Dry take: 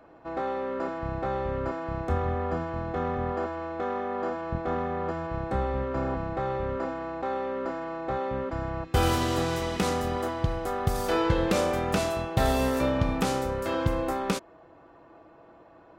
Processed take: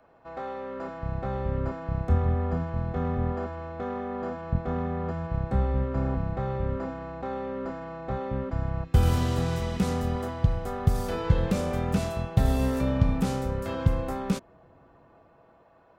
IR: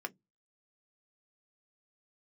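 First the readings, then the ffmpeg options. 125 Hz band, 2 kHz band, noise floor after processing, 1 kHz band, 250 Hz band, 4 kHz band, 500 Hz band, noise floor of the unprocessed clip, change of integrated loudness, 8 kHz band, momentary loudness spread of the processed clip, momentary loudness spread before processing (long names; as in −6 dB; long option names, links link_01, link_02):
+5.5 dB, −5.5 dB, −58 dBFS, −5.0 dB, +0.5 dB, −6.0 dB, −3.5 dB, −54 dBFS, +0.5 dB, −5.0 dB, 10 LU, 7 LU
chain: -filter_complex "[0:a]equalizer=frequency=320:width=5.9:gain=-12.5,acrossover=split=310|6800[link_01][link_02][link_03];[link_01]dynaudnorm=framelen=120:gausssize=17:maxgain=11dB[link_04];[link_02]alimiter=limit=-22dB:level=0:latency=1:release=15[link_05];[link_04][link_05][link_03]amix=inputs=3:normalize=0,volume=-4.5dB"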